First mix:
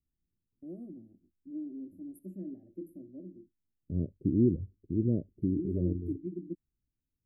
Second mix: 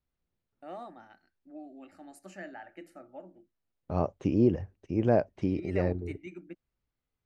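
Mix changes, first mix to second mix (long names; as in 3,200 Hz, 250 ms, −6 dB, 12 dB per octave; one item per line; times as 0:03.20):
first voice −8.5 dB
master: remove inverse Chebyshev band-stop filter 820–6,600 Hz, stop band 50 dB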